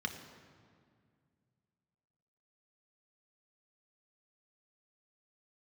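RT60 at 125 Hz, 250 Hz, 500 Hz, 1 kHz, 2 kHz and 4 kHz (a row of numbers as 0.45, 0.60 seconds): 3.1, 2.8, 2.2, 2.0, 1.8, 1.4 seconds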